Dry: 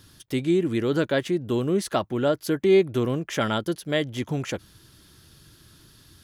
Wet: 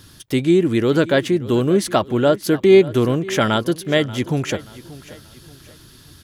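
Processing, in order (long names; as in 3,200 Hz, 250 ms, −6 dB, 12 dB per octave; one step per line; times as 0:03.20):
repeating echo 582 ms, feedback 37%, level −18 dB
level +7 dB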